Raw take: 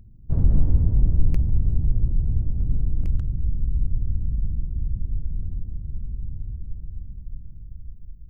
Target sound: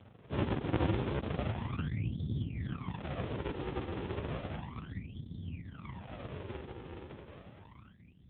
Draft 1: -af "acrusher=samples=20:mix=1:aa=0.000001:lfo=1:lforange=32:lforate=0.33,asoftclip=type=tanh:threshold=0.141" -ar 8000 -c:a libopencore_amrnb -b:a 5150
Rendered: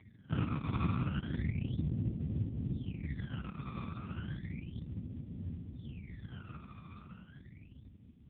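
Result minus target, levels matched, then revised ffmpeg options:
decimation with a swept rate: distortion -9 dB
-af "acrusher=samples=58:mix=1:aa=0.000001:lfo=1:lforange=92.8:lforate=0.33,asoftclip=type=tanh:threshold=0.141" -ar 8000 -c:a libopencore_amrnb -b:a 5150

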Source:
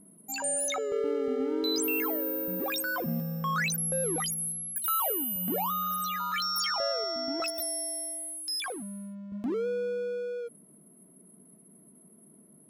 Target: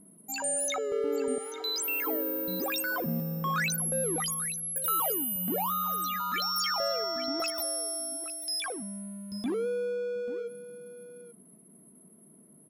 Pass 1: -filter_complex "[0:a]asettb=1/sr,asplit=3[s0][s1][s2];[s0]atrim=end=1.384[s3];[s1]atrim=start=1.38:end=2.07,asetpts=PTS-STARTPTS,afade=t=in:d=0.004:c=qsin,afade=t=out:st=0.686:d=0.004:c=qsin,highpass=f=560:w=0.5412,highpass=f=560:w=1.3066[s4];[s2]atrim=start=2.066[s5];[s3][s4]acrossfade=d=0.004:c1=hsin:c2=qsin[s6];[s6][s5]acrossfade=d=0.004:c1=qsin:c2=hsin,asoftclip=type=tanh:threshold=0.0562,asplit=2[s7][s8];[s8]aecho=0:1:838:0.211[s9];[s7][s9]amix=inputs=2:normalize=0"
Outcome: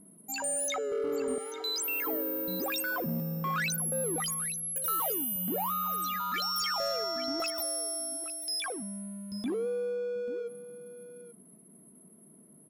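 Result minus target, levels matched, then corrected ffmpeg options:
saturation: distortion +20 dB
-filter_complex "[0:a]asettb=1/sr,asplit=3[s0][s1][s2];[s0]atrim=end=1.384[s3];[s1]atrim=start=1.38:end=2.07,asetpts=PTS-STARTPTS,afade=t=in:d=0.004:c=qsin,afade=t=out:st=0.686:d=0.004:c=qsin,highpass=f=560:w=0.5412,highpass=f=560:w=1.3066[s4];[s2]atrim=start=2.066[s5];[s3][s4]acrossfade=d=0.004:c1=hsin:c2=qsin[s6];[s6][s5]acrossfade=d=0.004:c1=qsin:c2=hsin,asoftclip=type=tanh:threshold=0.211,asplit=2[s7][s8];[s8]aecho=0:1:838:0.211[s9];[s7][s9]amix=inputs=2:normalize=0"

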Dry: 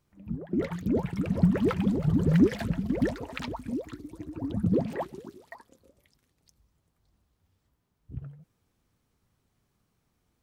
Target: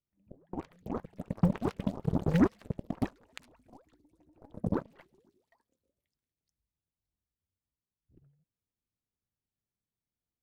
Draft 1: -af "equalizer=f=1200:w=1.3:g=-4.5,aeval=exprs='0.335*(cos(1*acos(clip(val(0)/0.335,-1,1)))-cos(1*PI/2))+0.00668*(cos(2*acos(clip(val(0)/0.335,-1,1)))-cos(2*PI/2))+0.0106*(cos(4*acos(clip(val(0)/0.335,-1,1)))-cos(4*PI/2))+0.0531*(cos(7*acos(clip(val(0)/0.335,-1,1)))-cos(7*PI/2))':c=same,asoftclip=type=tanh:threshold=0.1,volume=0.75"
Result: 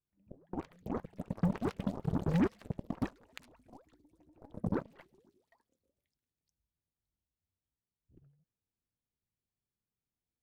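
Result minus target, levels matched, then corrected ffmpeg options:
saturation: distortion +13 dB
-af "equalizer=f=1200:w=1.3:g=-4.5,aeval=exprs='0.335*(cos(1*acos(clip(val(0)/0.335,-1,1)))-cos(1*PI/2))+0.00668*(cos(2*acos(clip(val(0)/0.335,-1,1)))-cos(2*PI/2))+0.0106*(cos(4*acos(clip(val(0)/0.335,-1,1)))-cos(4*PI/2))+0.0531*(cos(7*acos(clip(val(0)/0.335,-1,1)))-cos(7*PI/2))':c=same,asoftclip=type=tanh:threshold=0.316,volume=0.75"

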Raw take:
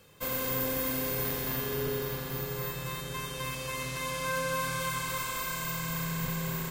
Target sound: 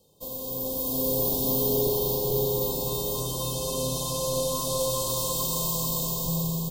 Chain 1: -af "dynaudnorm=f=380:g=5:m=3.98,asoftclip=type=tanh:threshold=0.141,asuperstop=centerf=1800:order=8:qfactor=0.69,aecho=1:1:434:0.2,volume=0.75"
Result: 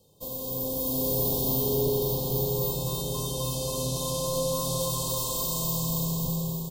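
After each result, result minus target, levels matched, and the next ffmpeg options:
echo-to-direct -11.5 dB; 125 Hz band +3.0 dB
-af "dynaudnorm=f=380:g=5:m=3.98,asoftclip=type=tanh:threshold=0.141,asuperstop=centerf=1800:order=8:qfactor=0.69,aecho=1:1:434:0.75,volume=0.75"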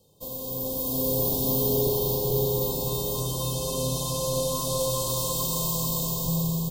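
125 Hz band +3.0 dB
-af "dynaudnorm=f=380:g=5:m=3.98,asoftclip=type=tanh:threshold=0.141,asuperstop=centerf=1800:order=8:qfactor=0.69,equalizer=f=100:t=o:w=1.3:g=-5,aecho=1:1:434:0.75,volume=0.75"

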